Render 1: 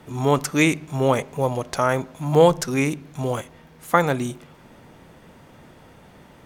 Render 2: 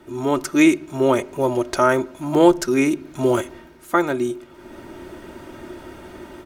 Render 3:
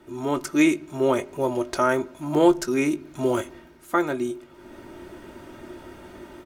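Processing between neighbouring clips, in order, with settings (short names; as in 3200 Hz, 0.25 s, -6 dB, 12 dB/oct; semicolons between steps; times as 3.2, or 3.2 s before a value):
comb 3.2 ms, depth 56%; AGC gain up to 10.5 dB; small resonant body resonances 360/1400 Hz, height 12 dB, ringing for 55 ms; gain -4 dB
doubler 20 ms -12.5 dB; gain -4.5 dB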